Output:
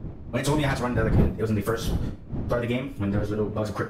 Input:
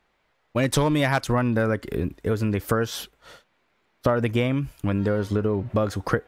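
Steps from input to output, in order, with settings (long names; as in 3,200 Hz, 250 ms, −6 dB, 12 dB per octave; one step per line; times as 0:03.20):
wind on the microphone 170 Hz −26 dBFS
four-comb reverb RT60 0.66 s, combs from 29 ms, DRR 7.5 dB
time stretch by phase vocoder 0.62×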